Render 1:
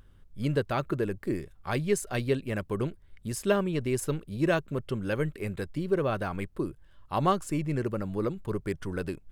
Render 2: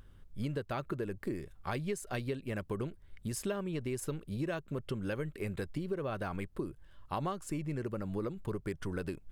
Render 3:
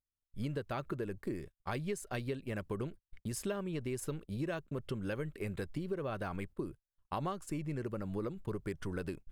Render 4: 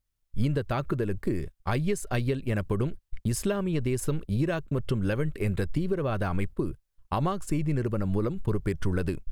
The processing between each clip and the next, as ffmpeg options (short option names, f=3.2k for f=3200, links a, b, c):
-af "acompressor=threshold=-33dB:ratio=6"
-af "agate=range=-41dB:threshold=-45dB:ratio=16:detection=peak,volume=-1.5dB"
-af "lowshelf=f=110:g=11,volume=8dB"